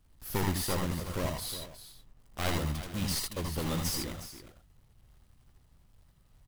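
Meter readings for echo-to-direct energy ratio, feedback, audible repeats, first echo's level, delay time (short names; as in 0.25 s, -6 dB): -2.0 dB, no steady repeat, 3, -2.5 dB, 80 ms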